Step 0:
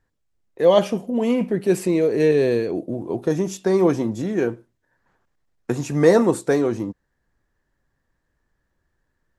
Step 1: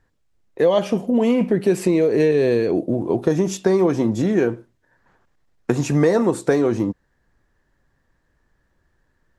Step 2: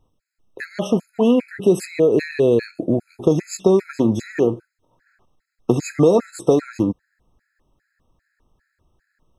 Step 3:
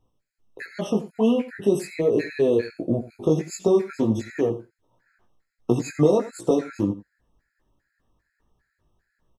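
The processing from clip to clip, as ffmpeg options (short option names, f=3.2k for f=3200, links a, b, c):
-af "highshelf=f=9.9k:g=-8,acompressor=threshold=-20dB:ratio=6,volume=6.5dB"
-af "afftfilt=real='re*gt(sin(2*PI*2.5*pts/sr)*(1-2*mod(floor(b*sr/1024/1300),2)),0)':imag='im*gt(sin(2*PI*2.5*pts/sr)*(1-2*mod(floor(b*sr/1024/1300),2)),0)':win_size=1024:overlap=0.75,volume=3dB"
-af "flanger=delay=17:depth=2.9:speed=1.4,aecho=1:1:87:0.168,volume=-1.5dB"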